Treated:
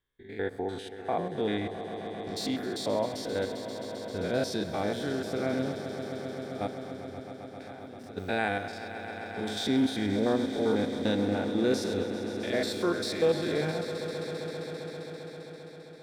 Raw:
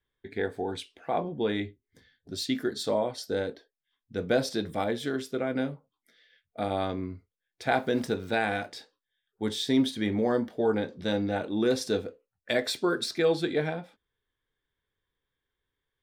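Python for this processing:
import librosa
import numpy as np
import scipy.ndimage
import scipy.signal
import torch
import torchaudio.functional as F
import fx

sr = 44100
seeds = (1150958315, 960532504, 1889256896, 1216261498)

y = fx.spec_steps(x, sr, hold_ms=100)
y = fx.level_steps(y, sr, step_db=24, at=(6.66, 8.16), fade=0.02)
y = fx.echo_swell(y, sr, ms=132, loudest=5, wet_db=-14.0)
y = fx.end_taper(y, sr, db_per_s=460.0)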